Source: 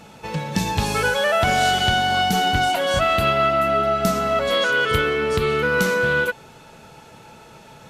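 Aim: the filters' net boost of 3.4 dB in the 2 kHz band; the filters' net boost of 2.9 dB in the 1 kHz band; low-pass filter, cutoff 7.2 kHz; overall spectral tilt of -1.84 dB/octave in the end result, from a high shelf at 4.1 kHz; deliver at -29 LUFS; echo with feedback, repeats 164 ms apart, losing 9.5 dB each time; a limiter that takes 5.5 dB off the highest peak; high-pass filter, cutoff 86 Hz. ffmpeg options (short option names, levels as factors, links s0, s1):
-af "highpass=86,lowpass=7200,equalizer=f=1000:t=o:g=3.5,equalizer=f=2000:t=o:g=4.5,highshelf=f=4100:g=-5.5,alimiter=limit=0.299:level=0:latency=1,aecho=1:1:164|328|492|656:0.335|0.111|0.0365|0.012,volume=0.282"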